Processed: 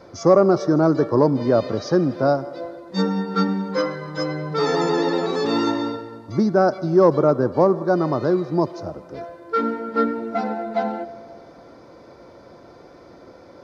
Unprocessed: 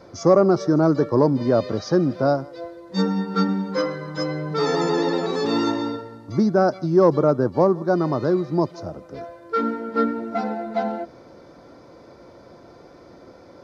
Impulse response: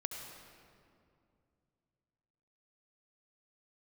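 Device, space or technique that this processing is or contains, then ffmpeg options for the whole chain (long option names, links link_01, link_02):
filtered reverb send: -filter_complex "[0:a]asplit=2[link_01][link_02];[link_02]highpass=280,lowpass=5200[link_03];[1:a]atrim=start_sample=2205[link_04];[link_03][link_04]afir=irnorm=-1:irlink=0,volume=-12dB[link_05];[link_01][link_05]amix=inputs=2:normalize=0"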